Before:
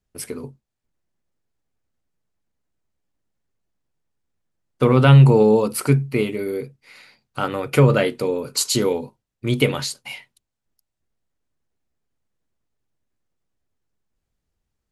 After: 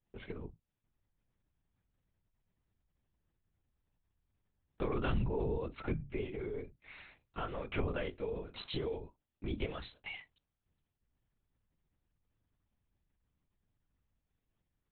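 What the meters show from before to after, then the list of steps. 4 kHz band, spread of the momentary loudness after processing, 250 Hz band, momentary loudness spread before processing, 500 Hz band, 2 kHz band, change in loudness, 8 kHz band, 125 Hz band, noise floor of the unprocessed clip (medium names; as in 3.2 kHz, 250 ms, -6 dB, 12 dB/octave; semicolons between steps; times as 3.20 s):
-20.0 dB, 14 LU, -20.5 dB, 21 LU, -19.5 dB, -17.5 dB, -21.5 dB, under -40 dB, -24.5 dB, -81 dBFS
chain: LPC vocoder at 8 kHz whisper; compression 2:1, threshold -38 dBFS, peak gain reduction 17.5 dB; trim -6 dB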